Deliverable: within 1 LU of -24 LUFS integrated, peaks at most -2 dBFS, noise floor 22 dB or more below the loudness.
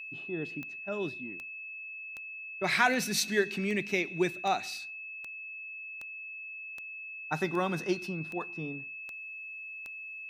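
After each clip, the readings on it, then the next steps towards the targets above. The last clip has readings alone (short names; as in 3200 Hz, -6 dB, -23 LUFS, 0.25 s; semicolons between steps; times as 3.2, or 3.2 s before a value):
clicks 13; steady tone 2600 Hz; tone level -40 dBFS; loudness -33.5 LUFS; peak -10.5 dBFS; loudness target -24.0 LUFS
-> de-click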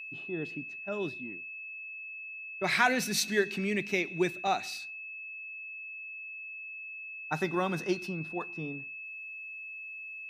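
clicks 0; steady tone 2600 Hz; tone level -40 dBFS
-> notch 2600 Hz, Q 30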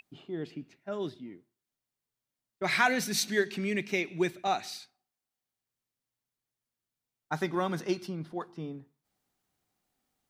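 steady tone none; loudness -32.0 LUFS; peak -11.0 dBFS; loudness target -24.0 LUFS
-> gain +8 dB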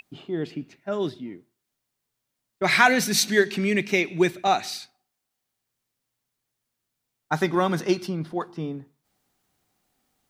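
loudness -24.0 LUFS; peak -3.0 dBFS; noise floor -81 dBFS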